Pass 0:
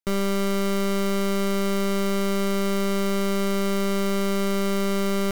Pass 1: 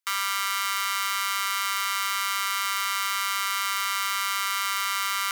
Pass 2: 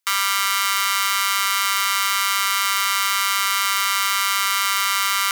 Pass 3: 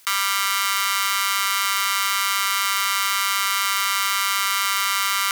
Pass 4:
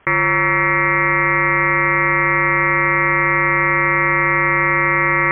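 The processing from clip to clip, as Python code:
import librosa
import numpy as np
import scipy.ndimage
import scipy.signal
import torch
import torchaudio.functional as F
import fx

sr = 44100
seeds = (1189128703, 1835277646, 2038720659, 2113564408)

y1 = scipy.signal.sosfilt(scipy.signal.butter(8, 980.0, 'highpass', fs=sr, output='sos'), x)
y1 = y1 * 10.0 ** (6.0 / 20.0)
y2 = fx.peak_eq(y1, sr, hz=1300.0, db=-2.0, octaves=1.8)
y2 = y2 * 10.0 ** (8.0 / 20.0)
y3 = fx.env_flatten(y2, sr, amount_pct=50)
y3 = y3 * 10.0 ** (-1.5 / 20.0)
y4 = fx.freq_invert(y3, sr, carrier_hz=3300)
y4 = y4 * 10.0 ** (8.0 / 20.0)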